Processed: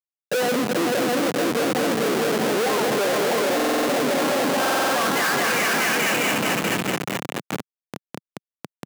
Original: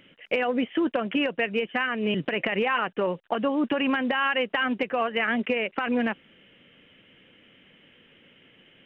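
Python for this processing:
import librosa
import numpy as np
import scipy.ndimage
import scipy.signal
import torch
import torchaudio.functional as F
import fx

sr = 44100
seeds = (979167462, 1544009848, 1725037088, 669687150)

p1 = fx.spec_quant(x, sr, step_db=15)
p2 = fx.dmg_wind(p1, sr, seeds[0], corner_hz=500.0, level_db=-36.0)
p3 = fx.high_shelf(p2, sr, hz=3300.0, db=11.0)
p4 = fx.rider(p3, sr, range_db=4, speed_s=0.5)
p5 = p3 + (p4 * librosa.db_to_amplitude(-1.0))
p6 = fx.peak_eq(p5, sr, hz=720.0, db=5.5, octaves=2.4, at=(2.55, 3.38))
p7 = p6 + fx.echo_heads(p6, sr, ms=215, heads='all three', feedback_pct=68, wet_db=-6.5, dry=0)
p8 = fx.filter_sweep_bandpass(p7, sr, from_hz=530.0, to_hz=3100.0, start_s=4.04, end_s=6.38, q=1.3)
p9 = fx.schmitt(p8, sr, flips_db=-24.0)
p10 = scipy.signal.sosfilt(scipy.signal.butter(4, 160.0, 'highpass', fs=sr, output='sos'), p9)
y = fx.buffer_glitch(p10, sr, at_s=(3.55, 4.6), block=2048, repeats=6)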